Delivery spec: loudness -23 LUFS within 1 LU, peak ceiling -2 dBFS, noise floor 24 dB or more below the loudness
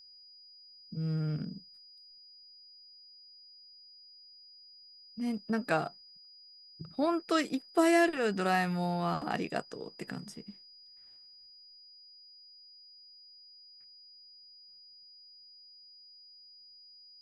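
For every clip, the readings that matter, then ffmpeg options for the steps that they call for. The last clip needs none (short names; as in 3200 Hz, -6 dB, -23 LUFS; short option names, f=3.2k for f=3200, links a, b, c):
steady tone 4900 Hz; tone level -53 dBFS; loudness -32.0 LUFS; peak -15.0 dBFS; loudness target -23.0 LUFS
-> -af "bandreject=f=4.9k:w=30"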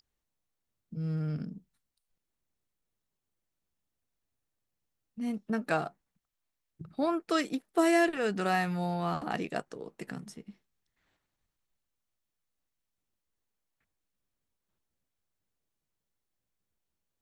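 steady tone none; loudness -31.0 LUFS; peak -15.0 dBFS; loudness target -23.0 LUFS
-> -af "volume=8dB"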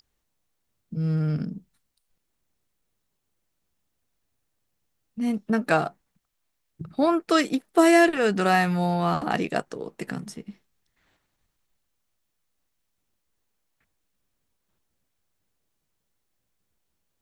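loudness -23.5 LUFS; peak -7.0 dBFS; noise floor -77 dBFS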